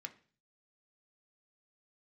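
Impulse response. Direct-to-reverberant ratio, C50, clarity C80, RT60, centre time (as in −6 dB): 5.0 dB, 16.5 dB, 21.0 dB, 0.40 s, 5 ms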